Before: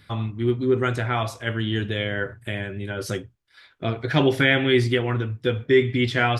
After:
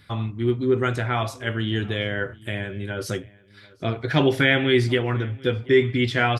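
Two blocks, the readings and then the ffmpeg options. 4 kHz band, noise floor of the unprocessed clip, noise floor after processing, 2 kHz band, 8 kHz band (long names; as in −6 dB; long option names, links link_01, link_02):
0.0 dB, −59 dBFS, −52 dBFS, 0.0 dB, 0.0 dB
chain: -filter_complex "[0:a]asplit=2[link_01][link_02];[link_02]adelay=735,lowpass=frequency=4900:poles=1,volume=-23.5dB,asplit=2[link_03][link_04];[link_04]adelay=735,lowpass=frequency=4900:poles=1,volume=0.16[link_05];[link_01][link_03][link_05]amix=inputs=3:normalize=0"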